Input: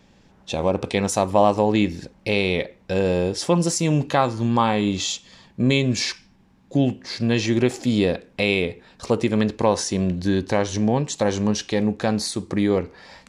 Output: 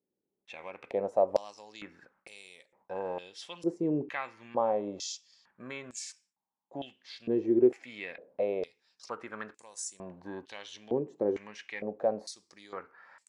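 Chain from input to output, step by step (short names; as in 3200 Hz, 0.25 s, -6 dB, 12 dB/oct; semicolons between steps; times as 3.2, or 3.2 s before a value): gate with hold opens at -42 dBFS; bell 4000 Hz -8 dB 1.5 oct; stepped band-pass 2.2 Hz 380–7900 Hz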